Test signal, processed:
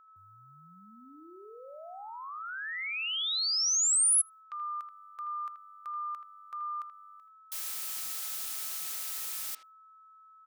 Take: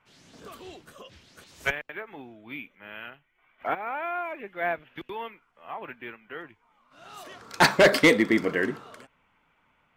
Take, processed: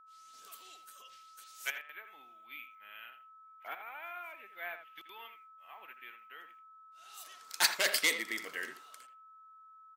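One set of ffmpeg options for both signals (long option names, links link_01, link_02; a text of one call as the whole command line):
ffmpeg -i in.wav -filter_complex "[0:a]agate=range=-33dB:threshold=-51dB:ratio=3:detection=peak,aderivative,aeval=exprs='val(0)+0.00126*sin(2*PI*1300*n/s)':channel_layout=same,asplit=2[link_01][link_02];[link_02]adelay=80,highpass=300,lowpass=3400,asoftclip=type=hard:threshold=-21dB,volume=-10dB[link_03];[link_01][link_03]amix=inputs=2:normalize=0,volume=1.5dB" out.wav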